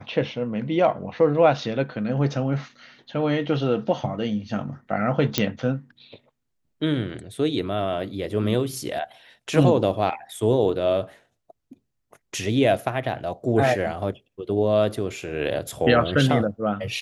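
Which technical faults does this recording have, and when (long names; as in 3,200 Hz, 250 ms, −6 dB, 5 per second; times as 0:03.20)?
0:05.38: click −4 dBFS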